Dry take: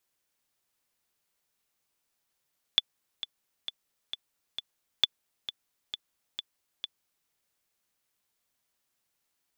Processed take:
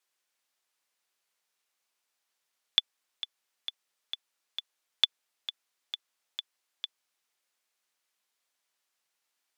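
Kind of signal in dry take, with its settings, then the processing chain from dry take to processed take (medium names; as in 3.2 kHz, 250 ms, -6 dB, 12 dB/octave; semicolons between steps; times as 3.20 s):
metronome 133 bpm, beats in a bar 5, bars 2, 3.47 kHz, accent 13.5 dB -7.5 dBFS
frequency weighting A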